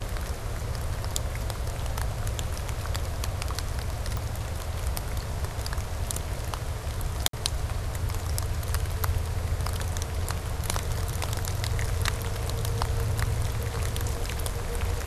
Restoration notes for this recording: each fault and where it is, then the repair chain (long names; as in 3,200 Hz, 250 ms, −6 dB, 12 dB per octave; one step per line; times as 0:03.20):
0:04.17: click
0:07.28–0:07.33: drop-out 53 ms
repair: click removal
repair the gap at 0:07.28, 53 ms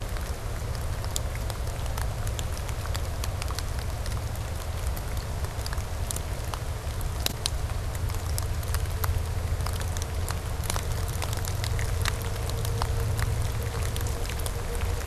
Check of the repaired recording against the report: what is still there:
0:04.17: click